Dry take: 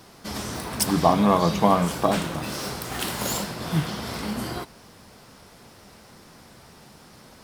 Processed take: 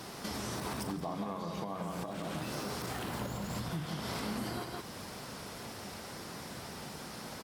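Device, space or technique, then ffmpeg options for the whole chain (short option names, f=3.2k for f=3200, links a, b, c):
podcast mastering chain: -filter_complex "[0:a]asettb=1/sr,asplit=3[a][b][c];[a]atrim=end=2.924[d];[b]atrim=start=2.92:end=3.7,asetpts=PTS-STARTPTS,afade=t=in:d=0.004:c=qsin,afade=t=out:st=0.776:d=0.004:c=qsin,asubboost=boost=11.5:cutoff=180[e];[c]atrim=start=3.696[f];[d][e]acrossfade=d=0.004:c1=hsin:c2=qsin[g];[g][f]acrossfade=d=0.004:c1=qsin:c2=hsin,highpass=f=81:p=1,aecho=1:1:40.82|169.1:0.282|0.398,deesser=0.75,acompressor=threshold=-38dB:ratio=2.5,alimiter=level_in=7.5dB:limit=-24dB:level=0:latency=1:release=423,volume=-7.5dB,volume=4.5dB" -ar 44100 -c:a libmp3lame -b:a 96k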